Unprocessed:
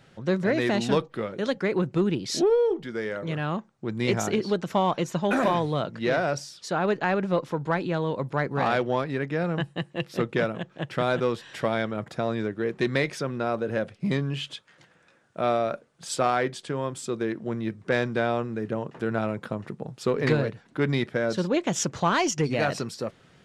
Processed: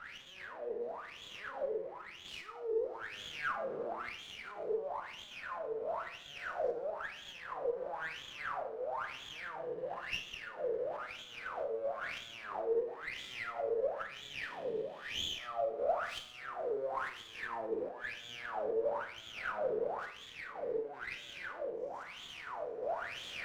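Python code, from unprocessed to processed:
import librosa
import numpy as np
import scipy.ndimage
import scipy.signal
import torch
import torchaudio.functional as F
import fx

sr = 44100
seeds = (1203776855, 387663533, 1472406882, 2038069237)

y = fx.spec_trails(x, sr, decay_s=2.98)
y = fx.high_shelf(y, sr, hz=6400.0, db=-10.0)
y = fx.over_compress(y, sr, threshold_db=-28.0, ratio=-0.5)
y = fx.transient(y, sr, attack_db=-8, sustain_db=-1)
y = fx.level_steps(y, sr, step_db=9)
y = fx.power_curve(y, sr, exponent=0.35)
y = fx.wah_lfo(y, sr, hz=1.0, low_hz=440.0, high_hz=3400.0, q=16.0)
y = fx.rev_schroeder(y, sr, rt60_s=0.48, comb_ms=26, drr_db=6.5)
y = fx.running_max(y, sr, window=3)
y = y * librosa.db_to_amplitude(-4.0)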